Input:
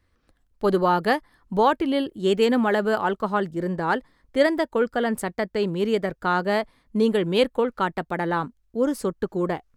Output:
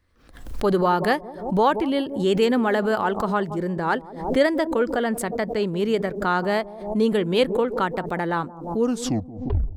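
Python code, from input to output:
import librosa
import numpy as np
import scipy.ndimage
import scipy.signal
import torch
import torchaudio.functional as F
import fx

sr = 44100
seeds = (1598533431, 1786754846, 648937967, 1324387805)

y = fx.tape_stop_end(x, sr, length_s=1.01)
y = fx.echo_bbd(y, sr, ms=176, stages=1024, feedback_pct=45, wet_db=-16.5)
y = fx.pre_swell(y, sr, db_per_s=86.0)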